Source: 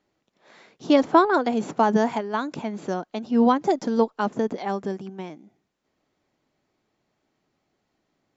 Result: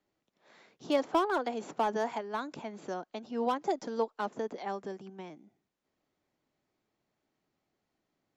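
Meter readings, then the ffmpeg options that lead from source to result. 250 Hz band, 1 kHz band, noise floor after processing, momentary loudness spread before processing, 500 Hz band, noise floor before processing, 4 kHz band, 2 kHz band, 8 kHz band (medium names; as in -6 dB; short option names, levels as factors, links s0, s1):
-15.0 dB, -9.5 dB, -84 dBFS, 15 LU, -9.5 dB, -76 dBFS, -7.5 dB, -9.5 dB, no reading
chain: -filter_complex "[0:a]acrossover=split=320|760[s0][s1][s2];[s0]acompressor=threshold=0.0112:ratio=6[s3];[s2]asoftclip=type=hard:threshold=0.0794[s4];[s3][s1][s4]amix=inputs=3:normalize=0,volume=0.398"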